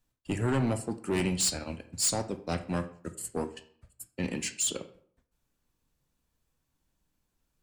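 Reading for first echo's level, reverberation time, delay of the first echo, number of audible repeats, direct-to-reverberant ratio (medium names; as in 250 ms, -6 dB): no echo, 0.55 s, no echo, no echo, 9.0 dB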